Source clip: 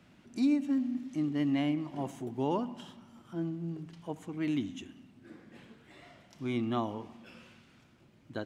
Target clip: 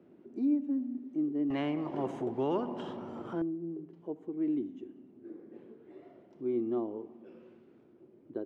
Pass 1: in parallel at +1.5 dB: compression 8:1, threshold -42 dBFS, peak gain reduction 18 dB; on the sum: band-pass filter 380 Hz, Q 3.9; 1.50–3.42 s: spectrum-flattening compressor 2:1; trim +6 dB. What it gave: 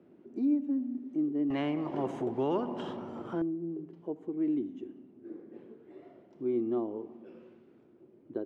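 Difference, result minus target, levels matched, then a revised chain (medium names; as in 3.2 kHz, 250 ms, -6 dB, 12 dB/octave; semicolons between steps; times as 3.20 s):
compression: peak gain reduction -8.5 dB
in parallel at +1.5 dB: compression 8:1, threshold -51.5 dBFS, peak gain reduction 26 dB; on the sum: band-pass filter 380 Hz, Q 3.9; 1.50–3.42 s: spectrum-flattening compressor 2:1; trim +6 dB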